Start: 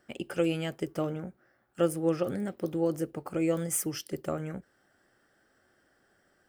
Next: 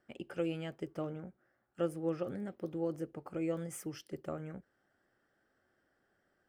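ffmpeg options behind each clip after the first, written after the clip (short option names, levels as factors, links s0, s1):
-af "highshelf=f=5200:g=-11.5,volume=0.422"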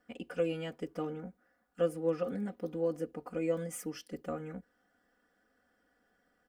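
-af "aecho=1:1:4.1:1"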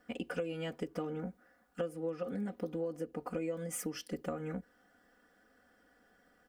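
-af "acompressor=threshold=0.01:ratio=8,volume=2"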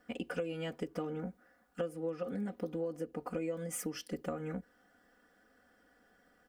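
-af anull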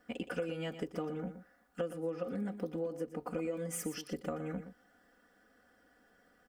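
-af "aecho=1:1:119:0.282"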